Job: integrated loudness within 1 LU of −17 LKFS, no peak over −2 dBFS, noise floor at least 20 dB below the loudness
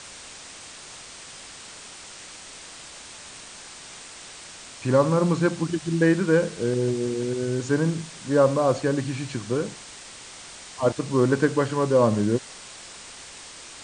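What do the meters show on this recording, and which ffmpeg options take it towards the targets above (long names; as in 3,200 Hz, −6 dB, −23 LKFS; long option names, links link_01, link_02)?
background noise floor −43 dBFS; target noise floor −44 dBFS; integrated loudness −23.5 LKFS; sample peak −6.5 dBFS; target loudness −17.0 LKFS
→ -af "afftdn=noise_reduction=6:noise_floor=-43"
-af "volume=6.5dB,alimiter=limit=-2dB:level=0:latency=1"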